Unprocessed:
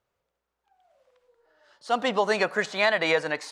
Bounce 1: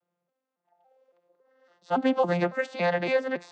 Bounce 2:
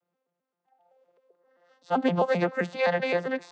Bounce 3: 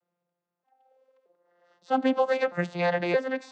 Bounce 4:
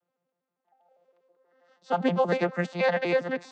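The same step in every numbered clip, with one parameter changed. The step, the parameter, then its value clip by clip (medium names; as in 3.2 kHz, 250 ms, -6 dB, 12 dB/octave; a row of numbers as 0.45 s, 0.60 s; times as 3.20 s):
vocoder on a broken chord, a note every: 279 ms, 130 ms, 627 ms, 80 ms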